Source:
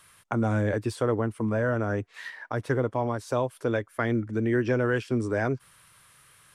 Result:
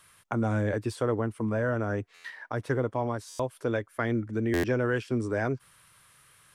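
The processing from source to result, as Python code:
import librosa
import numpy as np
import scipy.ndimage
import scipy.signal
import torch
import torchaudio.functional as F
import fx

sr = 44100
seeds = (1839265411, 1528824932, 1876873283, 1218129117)

y = fx.buffer_glitch(x, sr, at_s=(2.14, 3.29, 4.53), block=512, repeats=8)
y = y * 10.0 ** (-2.0 / 20.0)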